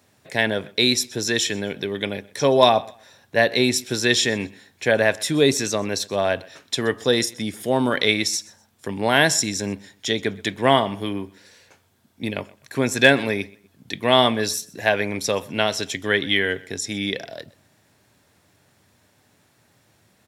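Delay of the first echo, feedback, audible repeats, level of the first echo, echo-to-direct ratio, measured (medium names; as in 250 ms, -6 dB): 126 ms, 25%, 2, -22.5 dB, -22.0 dB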